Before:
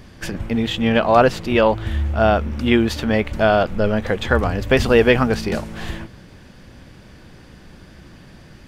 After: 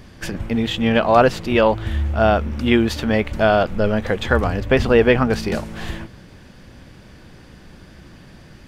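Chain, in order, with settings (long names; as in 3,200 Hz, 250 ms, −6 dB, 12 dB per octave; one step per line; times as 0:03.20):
0:04.60–0:05.30: high-shelf EQ 4,700 Hz −10.5 dB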